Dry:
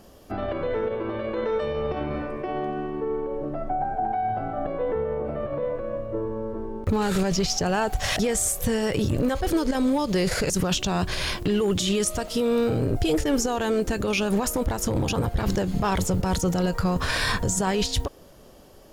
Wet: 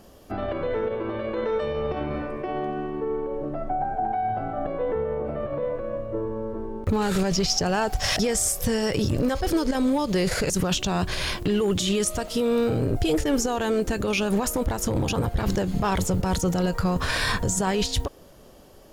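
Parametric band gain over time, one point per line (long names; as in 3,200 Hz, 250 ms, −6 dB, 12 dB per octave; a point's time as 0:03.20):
parametric band 5,200 Hz 0.27 octaves
0:06.96 −1 dB
0:07.89 +8.5 dB
0:09.37 +8.5 dB
0:09.85 −1 dB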